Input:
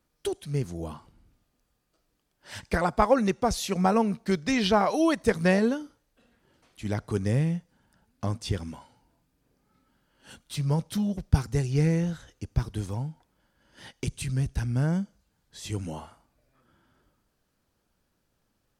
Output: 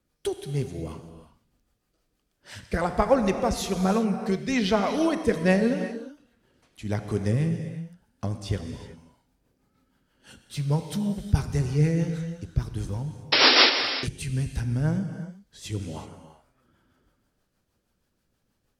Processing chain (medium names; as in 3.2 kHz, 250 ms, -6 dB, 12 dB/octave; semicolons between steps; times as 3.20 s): painted sound noise, 13.32–13.70 s, 240–5600 Hz -16 dBFS; rotary cabinet horn 6.3 Hz; gated-style reverb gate 400 ms flat, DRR 7 dB; trim +1.5 dB